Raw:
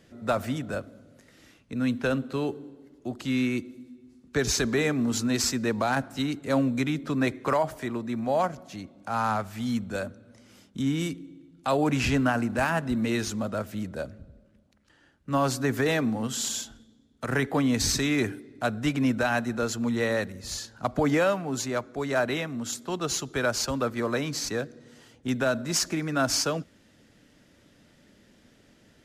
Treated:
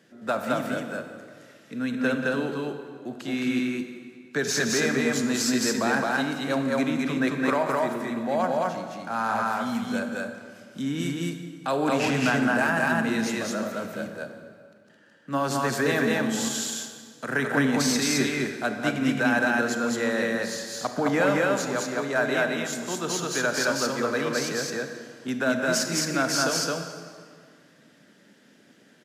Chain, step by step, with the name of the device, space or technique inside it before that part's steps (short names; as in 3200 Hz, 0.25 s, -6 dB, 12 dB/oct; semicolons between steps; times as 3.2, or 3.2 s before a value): stadium PA (HPF 150 Hz 24 dB/oct; bell 1600 Hz +7 dB 0.22 oct; loudspeakers at several distances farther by 62 m -12 dB, 74 m -1 dB; reverb RT60 2.0 s, pre-delay 28 ms, DRR 7 dB); gain -1.5 dB